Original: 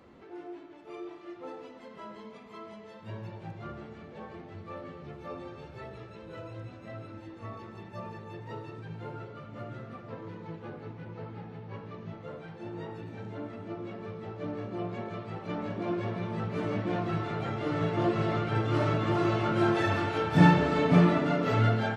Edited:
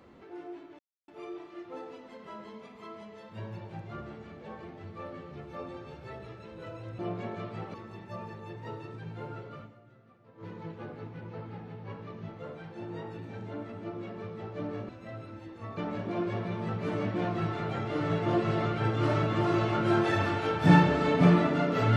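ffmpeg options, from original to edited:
ffmpeg -i in.wav -filter_complex "[0:a]asplit=8[link_01][link_02][link_03][link_04][link_05][link_06][link_07][link_08];[link_01]atrim=end=0.79,asetpts=PTS-STARTPTS,afade=type=out:start_time=0.786:duration=0.004:curve=hsin,apad=pad_dur=0.29[link_09];[link_02]atrim=start=0.79:end=6.702,asetpts=PTS-STARTPTS,afade=type=in:duration=0.004:curve=hsin[link_10];[link_03]atrim=start=14.728:end=15.482[link_11];[link_04]atrim=start=7.578:end=9.6,asetpts=PTS-STARTPTS,afade=type=out:start_time=1.902:duration=0.12:curve=qua:silence=0.149624[link_12];[link_05]atrim=start=9.6:end=10.17,asetpts=PTS-STARTPTS,volume=-16.5dB[link_13];[link_06]atrim=start=10.17:end=14.732,asetpts=PTS-STARTPTS,afade=type=in:duration=0.12:curve=qua:silence=0.149624[link_14];[link_07]atrim=start=6.698:end=7.582[link_15];[link_08]atrim=start=15.478[link_16];[link_09][link_10]concat=n=2:v=0:a=1[link_17];[link_17][link_11]acrossfade=duration=0.004:curve1=hsin:curve2=hsin[link_18];[link_12][link_13][link_14]concat=n=3:v=0:a=1[link_19];[link_18][link_19]acrossfade=duration=0.004:curve1=hsin:curve2=hsin[link_20];[link_20][link_15]acrossfade=duration=0.004:curve1=hsin:curve2=hsin[link_21];[link_21][link_16]acrossfade=duration=0.004:curve1=hsin:curve2=hsin" out.wav

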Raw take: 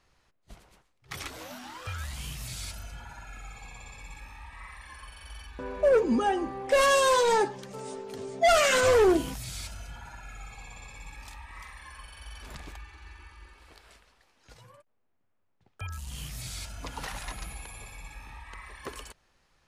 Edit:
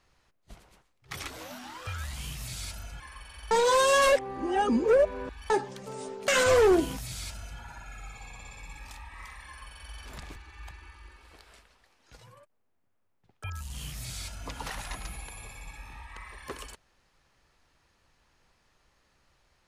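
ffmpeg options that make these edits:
ffmpeg -i in.wav -filter_complex "[0:a]asplit=7[link_01][link_02][link_03][link_04][link_05][link_06][link_07];[link_01]atrim=end=3.002[link_08];[link_02]atrim=start=4.868:end=5.382[link_09];[link_03]atrim=start=5.378:end=7.372,asetpts=PTS-STARTPTS,areverse[link_10];[link_04]atrim=start=7.368:end=8.152[link_11];[link_05]atrim=start=8.648:end=12.732[link_12];[link_06]atrim=start=12.728:end=13.082,asetpts=PTS-STARTPTS,areverse[link_13];[link_07]atrim=start=13.078[link_14];[link_08][link_09]acrossfade=duration=0.004:curve1=hsin:curve2=hsin[link_15];[link_15][link_10]acrossfade=duration=0.004:curve1=hsin:curve2=hsin[link_16];[link_16][link_11]acrossfade=duration=0.004:curve1=hsin:curve2=hsin[link_17];[link_17][link_12]acrossfade=duration=0.004:curve1=hsin:curve2=hsin[link_18];[link_18][link_13]acrossfade=duration=0.004:curve1=hsin:curve2=hsin[link_19];[link_19][link_14]acrossfade=duration=0.004:curve1=hsin:curve2=hsin" out.wav

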